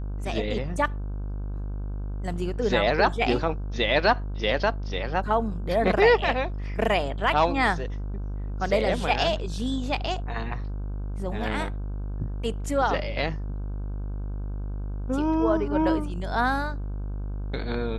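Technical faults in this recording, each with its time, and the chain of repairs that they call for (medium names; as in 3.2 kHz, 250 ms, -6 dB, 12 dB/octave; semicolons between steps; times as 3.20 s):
buzz 50 Hz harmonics 32 -31 dBFS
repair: de-hum 50 Hz, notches 32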